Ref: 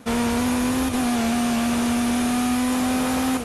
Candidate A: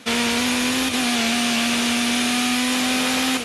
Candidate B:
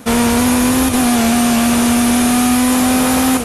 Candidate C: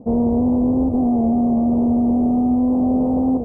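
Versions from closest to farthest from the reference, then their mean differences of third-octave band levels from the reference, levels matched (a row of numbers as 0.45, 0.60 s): B, A, C; 1.0, 4.5, 15.0 dB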